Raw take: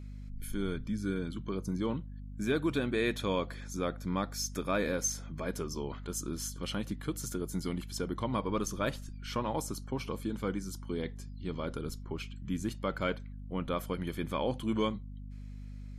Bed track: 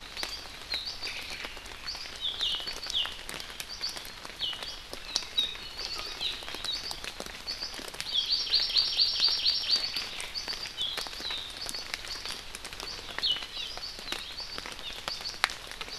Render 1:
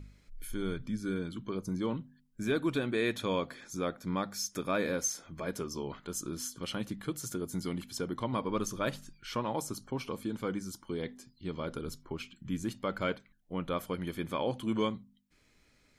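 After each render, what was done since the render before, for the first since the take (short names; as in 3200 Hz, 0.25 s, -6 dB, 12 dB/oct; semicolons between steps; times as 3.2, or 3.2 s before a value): de-hum 50 Hz, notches 5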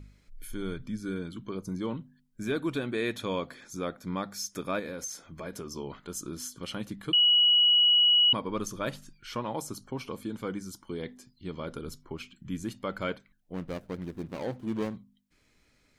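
4.79–5.75 compressor, threshold -33 dBFS; 7.13–8.33 bleep 2920 Hz -18 dBFS; 13.54–14.97 median filter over 41 samples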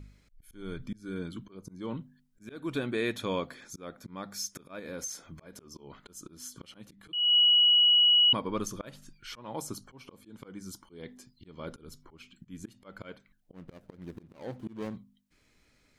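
auto swell 0.287 s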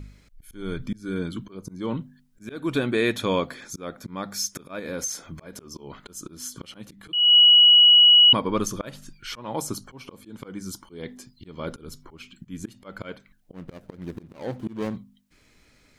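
gain +8 dB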